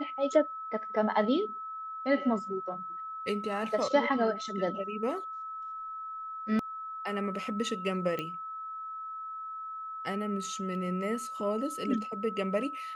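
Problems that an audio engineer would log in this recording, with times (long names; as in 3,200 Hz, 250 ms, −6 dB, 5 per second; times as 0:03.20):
whistle 1,300 Hz −37 dBFS
0:08.19: click −21 dBFS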